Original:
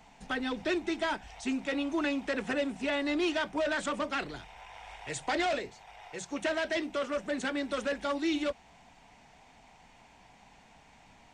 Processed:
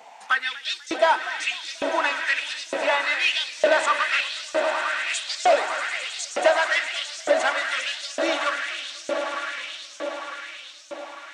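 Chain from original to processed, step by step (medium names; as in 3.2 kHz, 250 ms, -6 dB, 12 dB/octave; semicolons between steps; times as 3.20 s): echo with a slow build-up 106 ms, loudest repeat 8, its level -13.5 dB; LFO high-pass saw up 1.1 Hz 480–6700 Hz; modulated delay 243 ms, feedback 39%, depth 163 cents, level -19 dB; trim +8 dB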